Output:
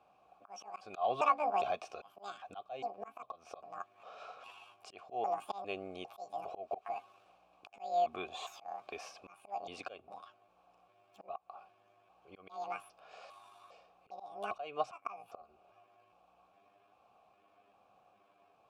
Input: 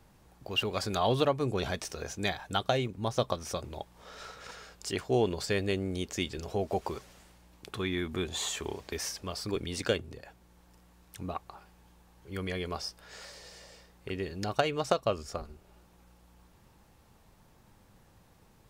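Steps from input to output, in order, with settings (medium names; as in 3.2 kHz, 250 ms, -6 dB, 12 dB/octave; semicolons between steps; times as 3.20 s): pitch shift switched off and on +12 st, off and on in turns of 403 ms; vowel filter a; slow attack 245 ms; trim +8.5 dB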